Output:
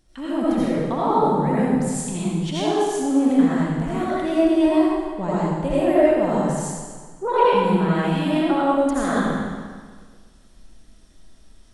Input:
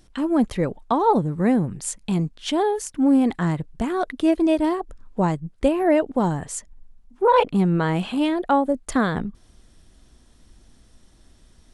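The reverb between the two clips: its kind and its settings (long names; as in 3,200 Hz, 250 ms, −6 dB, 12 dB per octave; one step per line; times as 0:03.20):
comb and all-pass reverb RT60 1.6 s, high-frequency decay 0.95×, pre-delay 45 ms, DRR −9.5 dB
level −8.5 dB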